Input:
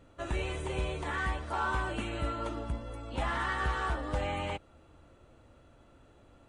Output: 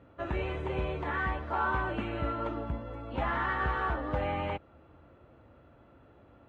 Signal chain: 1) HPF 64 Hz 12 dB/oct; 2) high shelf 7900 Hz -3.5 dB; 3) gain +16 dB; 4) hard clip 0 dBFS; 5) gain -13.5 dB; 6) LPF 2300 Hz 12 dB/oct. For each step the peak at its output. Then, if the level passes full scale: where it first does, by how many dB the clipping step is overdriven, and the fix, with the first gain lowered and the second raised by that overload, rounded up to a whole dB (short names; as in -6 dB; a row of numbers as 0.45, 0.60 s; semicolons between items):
-21.0, -21.0, -5.0, -5.0, -18.5, -18.5 dBFS; no overload